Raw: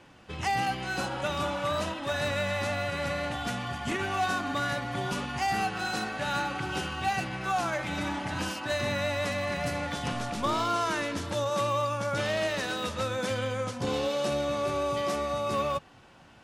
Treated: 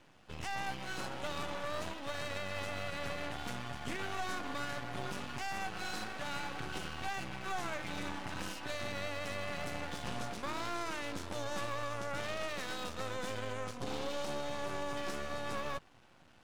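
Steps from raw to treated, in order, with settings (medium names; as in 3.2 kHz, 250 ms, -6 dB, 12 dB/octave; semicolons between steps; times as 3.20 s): half-wave rectifier; peak limiter -22 dBFS, peak gain reduction 6 dB; trim -4 dB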